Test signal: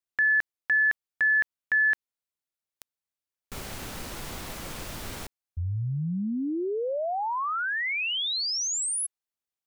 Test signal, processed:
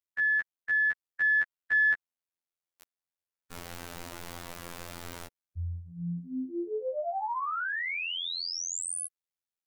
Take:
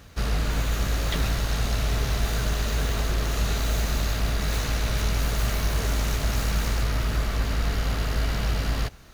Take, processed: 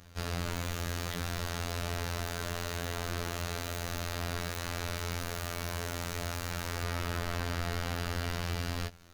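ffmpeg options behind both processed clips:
-filter_complex "[0:a]acrossover=split=360|2200[a][b][c];[b]dynaudnorm=f=150:g=17:m=3.5dB[d];[a][d][c]amix=inputs=3:normalize=0,afftfilt=real='hypot(re,im)*cos(PI*b)':imag='0':win_size=2048:overlap=0.75,aeval=exprs='0.473*(cos(1*acos(clip(val(0)/0.473,-1,1)))-cos(1*PI/2))+0.133*(cos(2*acos(clip(val(0)/0.473,-1,1)))-cos(2*PI/2))+0.0266*(cos(3*acos(clip(val(0)/0.473,-1,1)))-cos(3*PI/2))+0.0299*(cos(4*acos(clip(val(0)/0.473,-1,1)))-cos(4*PI/2))':c=same,alimiter=limit=-13dB:level=0:latency=1,volume=-1.5dB"

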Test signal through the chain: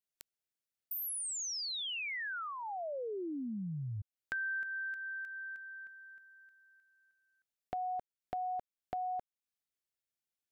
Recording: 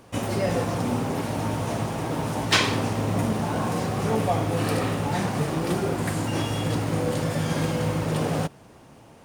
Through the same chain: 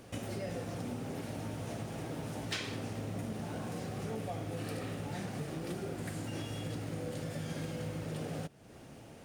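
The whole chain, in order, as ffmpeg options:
-af "equalizer=f=1k:w=2.6:g=-8.5,acompressor=threshold=-41dB:ratio=2.5,volume=-1.5dB"

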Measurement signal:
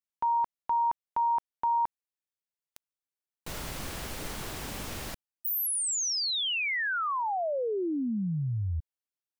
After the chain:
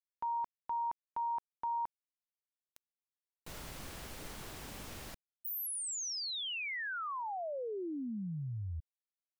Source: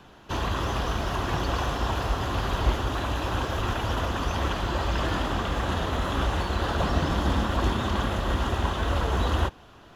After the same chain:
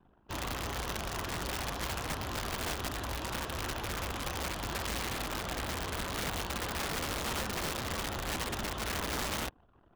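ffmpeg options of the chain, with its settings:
-af "anlmdn=0.0158,aeval=exprs='(mod(10.6*val(0)+1,2)-1)/10.6':c=same,volume=-9dB"

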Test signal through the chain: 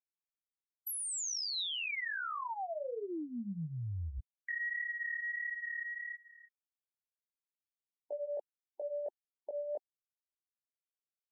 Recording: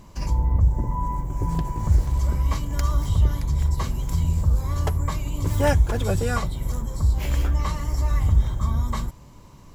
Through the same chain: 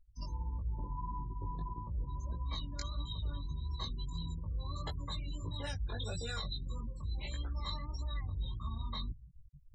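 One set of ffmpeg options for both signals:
-filter_complex "[0:a]equalizer=f=3.9k:w=5.9:g=12,afftdn=nr=26:nf=-32,acrossover=split=170|730|2000|6400[a][b][c][d][e];[b]acompressor=threshold=-32dB:ratio=4[f];[c]acompressor=threshold=-42dB:ratio=4[g];[d]acompressor=threshold=-39dB:ratio=4[h];[e]acompressor=threshold=-44dB:ratio=4[i];[a][f][g][h][i]amix=inputs=5:normalize=0,tiltshelf=f=1.1k:g=-7.5,afftfilt=real='re*gte(hypot(re,im),0.00708)':imag='im*gte(hypot(re,im),0.00708)':win_size=1024:overlap=0.75,flanger=delay=17:depth=4.1:speed=1.6,areverse,acompressor=threshold=-46dB:ratio=4,areverse,volume=7.5dB"

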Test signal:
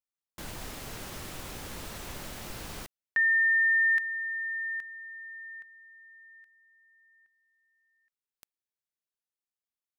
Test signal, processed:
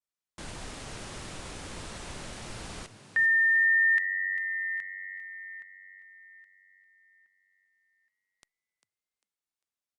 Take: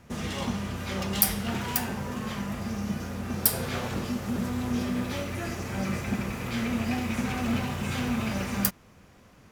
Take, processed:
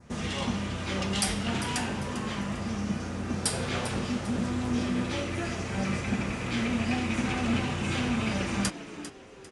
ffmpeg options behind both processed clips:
-filter_complex "[0:a]adynamicequalizer=threshold=0.00631:dfrequency=2900:dqfactor=1.5:tfrequency=2900:tqfactor=1.5:attack=5:release=100:ratio=0.375:range=1.5:mode=boostabove:tftype=bell,asplit=2[a][b];[b]asplit=4[c][d][e][f];[c]adelay=398,afreqshift=94,volume=-12.5dB[g];[d]adelay=796,afreqshift=188,volume=-21.6dB[h];[e]adelay=1194,afreqshift=282,volume=-30.7dB[i];[f]adelay=1592,afreqshift=376,volume=-39.9dB[j];[g][h][i][j]amix=inputs=4:normalize=0[k];[a][k]amix=inputs=2:normalize=0,aresample=22050,aresample=44100" -ar 48000 -c:a libopus -b:a 96k

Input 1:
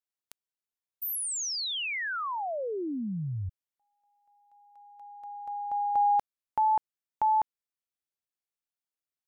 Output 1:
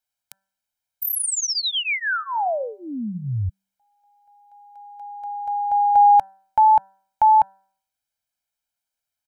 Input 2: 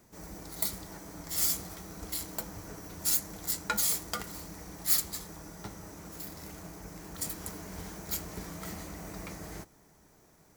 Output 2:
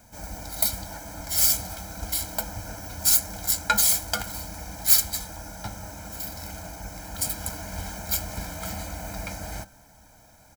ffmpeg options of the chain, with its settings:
-af "equalizer=f=160:w=5.8:g=-12.5,aecho=1:1:1.3:0.97,bandreject=f=193.8:t=h:w=4,bandreject=f=387.6:t=h:w=4,bandreject=f=581.4:t=h:w=4,bandreject=f=775.2:t=h:w=4,bandreject=f=969:t=h:w=4,bandreject=f=1.1628k:t=h:w=4,bandreject=f=1.3566k:t=h:w=4,bandreject=f=1.5504k:t=h:w=4,bandreject=f=1.7442k:t=h:w=4,volume=5.5dB"

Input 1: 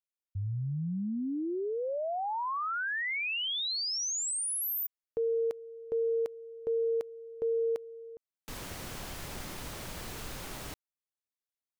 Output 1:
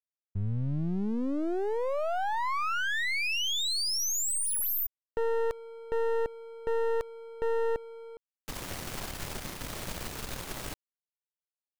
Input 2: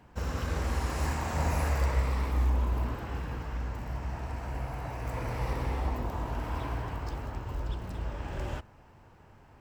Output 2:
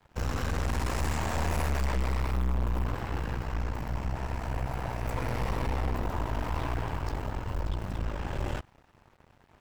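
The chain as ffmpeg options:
-af "aeval=exprs='(tanh(50.1*val(0)+0.75)-tanh(0.75))/50.1':c=same,aeval=exprs='sgn(val(0))*max(abs(val(0))-0.001,0)':c=same,volume=8dB"

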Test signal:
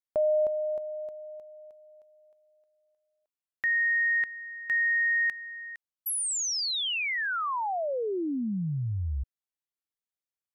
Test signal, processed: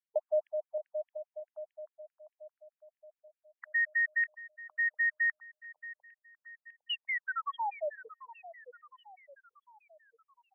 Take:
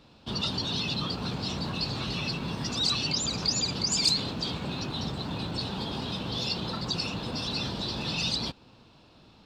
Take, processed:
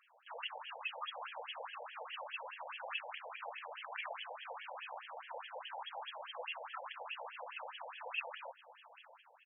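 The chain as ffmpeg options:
-filter_complex "[0:a]bandreject=f=61.68:t=h:w=4,bandreject=f=123.36:t=h:w=4,aeval=exprs='(mod(9.44*val(0)+1,2)-1)/9.44':c=same,asplit=2[a][b];[b]adelay=703,lowpass=f=4.4k:p=1,volume=-15dB,asplit=2[c][d];[d]adelay=703,lowpass=f=4.4k:p=1,volume=0.53,asplit=2[e][f];[f]adelay=703,lowpass=f=4.4k:p=1,volume=0.53,asplit=2[g][h];[h]adelay=703,lowpass=f=4.4k:p=1,volume=0.53,asplit=2[i][j];[j]adelay=703,lowpass=f=4.4k:p=1,volume=0.53[k];[a][c][e][g][i][k]amix=inputs=6:normalize=0,afftfilt=real='re*between(b*sr/1024,640*pow(2400/640,0.5+0.5*sin(2*PI*4.8*pts/sr))/1.41,640*pow(2400/640,0.5+0.5*sin(2*PI*4.8*pts/sr))*1.41)':imag='im*between(b*sr/1024,640*pow(2400/640,0.5+0.5*sin(2*PI*4.8*pts/sr))/1.41,640*pow(2400/640,0.5+0.5*sin(2*PI*4.8*pts/sr))*1.41)':win_size=1024:overlap=0.75,volume=-1.5dB"

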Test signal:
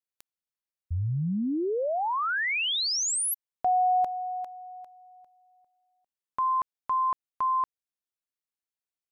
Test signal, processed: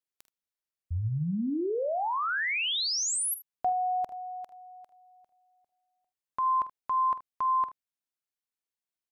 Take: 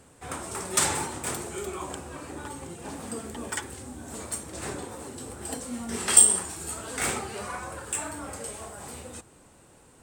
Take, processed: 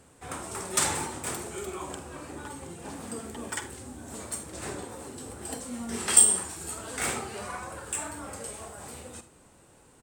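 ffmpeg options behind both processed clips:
-af "aecho=1:1:47|77:0.211|0.141,volume=-2dB"

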